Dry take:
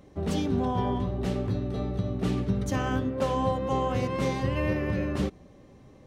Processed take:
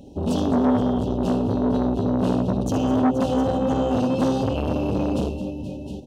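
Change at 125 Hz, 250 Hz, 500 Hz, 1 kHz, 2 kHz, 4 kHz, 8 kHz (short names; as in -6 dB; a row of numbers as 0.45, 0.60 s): +2.5, +9.0, +6.0, +4.0, -2.5, +3.5, +3.0 dB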